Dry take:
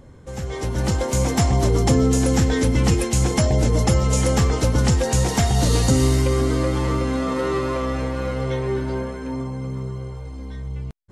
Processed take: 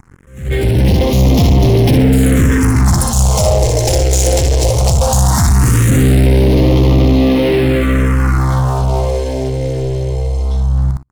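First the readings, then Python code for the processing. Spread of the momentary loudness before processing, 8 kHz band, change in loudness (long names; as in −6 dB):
13 LU, +7.5 dB, +8.5 dB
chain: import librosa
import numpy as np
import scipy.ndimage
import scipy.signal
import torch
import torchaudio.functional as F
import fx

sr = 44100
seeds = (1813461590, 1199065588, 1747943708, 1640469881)

y = fx.echo_feedback(x, sr, ms=61, feedback_pct=29, wet_db=-4.5)
y = fx.leveller(y, sr, passes=5)
y = fx.phaser_stages(y, sr, stages=4, low_hz=200.0, high_hz=1500.0, hz=0.18, feedback_pct=20)
y = fx.attack_slew(y, sr, db_per_s=120.0)
y = F.gain(torch.from_numpy(y), -3.0).numpy()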